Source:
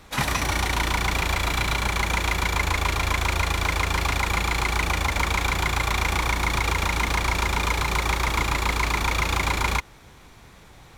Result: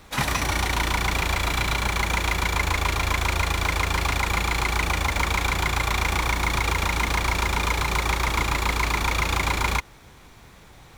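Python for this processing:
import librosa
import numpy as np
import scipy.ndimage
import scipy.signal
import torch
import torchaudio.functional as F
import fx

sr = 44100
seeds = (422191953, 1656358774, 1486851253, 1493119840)

y = fx.quant_companded(x, sr, bits=6)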